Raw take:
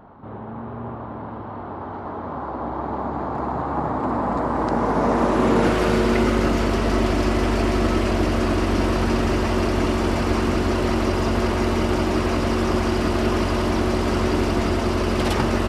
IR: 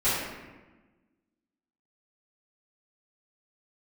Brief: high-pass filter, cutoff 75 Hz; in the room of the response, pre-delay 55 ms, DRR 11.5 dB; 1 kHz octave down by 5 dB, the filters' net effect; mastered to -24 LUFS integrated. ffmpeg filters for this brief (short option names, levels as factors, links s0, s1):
-filter_complex "[0:a]highpass=75,equalizer=f=1000:t=o:g=-6.5,asplit=2[s0][s1];[1:a]atrim=start_sample=2205,adelay=55[s2];[s1][s2]afir=irnorm=-1:irlink=0,volume=0.0562[s3];[s0][s3]amix=inputs=2:normalize=0,volume=0.841"